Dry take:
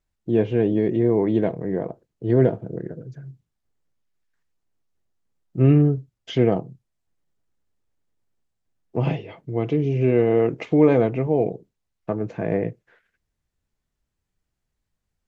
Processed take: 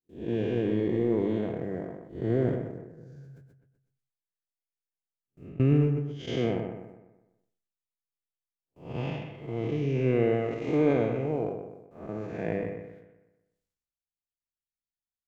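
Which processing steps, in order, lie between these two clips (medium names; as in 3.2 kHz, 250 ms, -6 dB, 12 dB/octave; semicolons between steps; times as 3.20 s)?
spectral blur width 226 ms; gate with hold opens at -49 dBFS; treble shelf 2 kHz +11 dB; hum notches 50/100 Hz; 2.77–5.60 s: compression 16:1, threshold -37 dBFS, peak gain reduction 18 dB; transient shaper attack +5 dB, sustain -8 dB; bucket-brigade echo 124 ms, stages 2048, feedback 32%, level -8 dB; decay stretcher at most 56 dB/s; trim -7 dB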